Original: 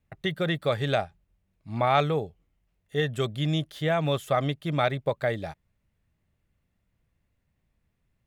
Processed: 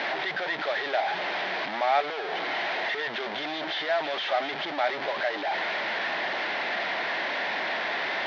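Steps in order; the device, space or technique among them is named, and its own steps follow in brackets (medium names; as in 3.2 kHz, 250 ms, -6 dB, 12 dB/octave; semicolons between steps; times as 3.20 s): digital answering machine (band-pass 400–3300 Hz; one-bit delta coder 32 kbps, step -21 dBFS; cabinet simulation 490–3700 Hz, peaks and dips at 490 Hz -7 dB, 730 Hz +4 dB, 1.2 kHz -7 dB, 1.8 kHz +3 dB, 2.7 kHz -5 dB)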